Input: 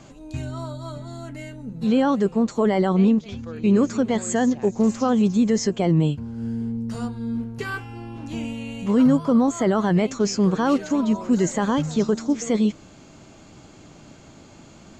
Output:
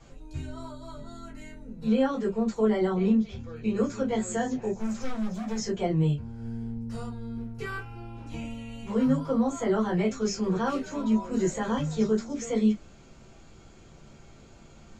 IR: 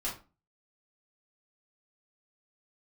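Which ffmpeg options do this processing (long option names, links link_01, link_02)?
-filter_complex "[0:a]asplit=3[link_01][link_02][link_03];[link_01]afade=type=out:start_time=4.75:duration=0.02[link_04];[link_02]volume=25dB,asoftclip=hard,volume=-25dB,afade=type=in:start_time=4.75:duration=0.02,afade=type=out:start_time=5.56:duration=0.02[link_05];[link_03]afade=type=in:start_time=5.56:duration=0.02[link_06];[link_04][link_05][link_06]amix=inputs=3:normalize=0[link_07];[1:a]atrim=start_sample=2205,afade=type=out:start_time=0.17:duration=0.01,atrim=end_sample=7938,asetrate=83790,aresample=44100[link_08];[link_07][link_08]afir=irnorm=-1:irlink=0,volume=-4dB"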